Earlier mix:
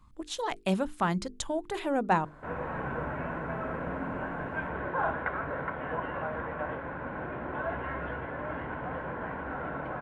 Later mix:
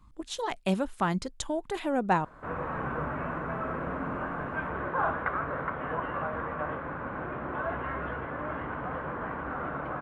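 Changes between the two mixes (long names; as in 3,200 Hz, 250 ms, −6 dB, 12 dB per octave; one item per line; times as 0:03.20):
background: remove notch filter 1,200 Hz, Q 5
master: remove mains-hum notches 50/100/150/200/250/300/350/400/450 Hz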